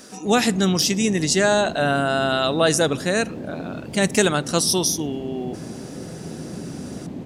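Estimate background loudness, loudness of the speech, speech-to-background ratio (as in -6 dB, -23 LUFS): -34.5 LUFS, -20.5 LUFS, 14.0 dB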